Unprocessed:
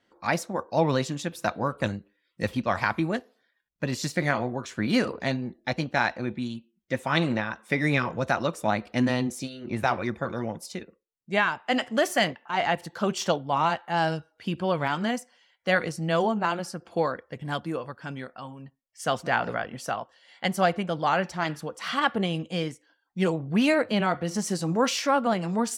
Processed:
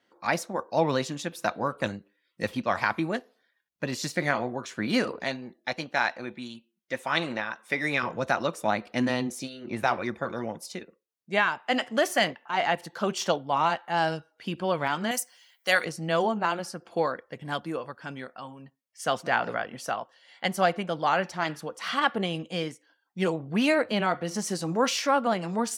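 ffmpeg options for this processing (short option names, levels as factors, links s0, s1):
-filter_complex "[0:a]asettb=1/sr,asplit=3[s0][s1][s2];[s0]atrim=end=5.244[s3];[s1]atrim=start=5.24:end=8.03,asetpts=PTS-STARTPTS,afade=t=in:d=0.004:c=qsin,afade=t=out:st=2.786:d=0.004:c=qsin,lowshelf=f=360:g=-8[s4];[s2]atrim=start=8.026[s5];[s3][s4]acrossfade=d=0.004:c1=hsin:c2=qsin[s6];[s6][s5]acrossfade=d=0.004:c1=qsin:c2=hsin,asettb=1/sr,asplit=3[s7][s8][s9];[s7]atrim=end=15.114[s10];[s8]atrim=start=15.11:end=15.85,asetpts=PTS-STARTPTS,afade=t=in:d=0.004:c=qsin,afade=t=out:st=0.736:d=0.004:c=qsin,aemphasis=mode=production:type=riaa[s11];[s9]atrim=start=15.846[s12];[s10][s11]acrossfade=d=0.004:c1=hsin:c2=qsin[s13];[s13][s12]acrossfade=d=0.004:c1=qsin:c2=hsin,highpass=f=220:p=1,bandreject=f=7600:w=23"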